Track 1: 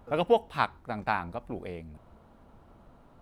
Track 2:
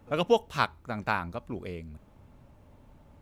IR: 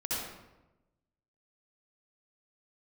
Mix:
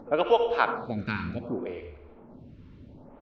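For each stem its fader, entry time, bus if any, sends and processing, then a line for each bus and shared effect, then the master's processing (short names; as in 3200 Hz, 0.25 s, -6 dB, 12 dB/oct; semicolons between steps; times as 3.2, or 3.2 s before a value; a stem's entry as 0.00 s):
-8.0 dB, 0.00 s, no send, dry
0.0 dB, 1.2 ms, send -9.5 dB, bell 350 Hz +6 dB 1.4 oct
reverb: on, RT60 1.0 s, pre-delay 58 ms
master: LPF 4700 Hz 24 dB/oct; upward compressor, threshold -38 dBFS; photocell phaser 0.66 Hz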